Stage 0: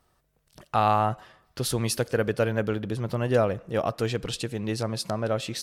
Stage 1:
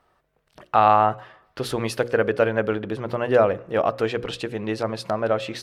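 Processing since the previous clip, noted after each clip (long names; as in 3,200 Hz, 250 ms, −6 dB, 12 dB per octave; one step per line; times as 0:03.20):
bass and treble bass −9 dB, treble −15 dB
mains-hum notches 60/120/180/240/300/360/420/480/540 Hz
level +6.5 dB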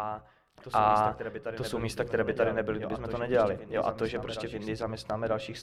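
sub-octave generator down 1 octave, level −5 dB
backwards echo 935 ms −9 dB
level −8 dB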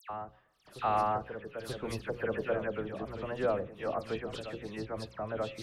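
all-pass dispersion lows, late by 99 ms, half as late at 2,800 Hz
level −5 dB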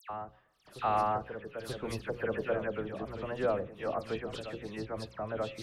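no processing that can be heard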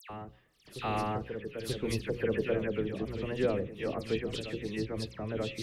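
flat-topped bell 940 Hz −11 dB
level +5.5 dB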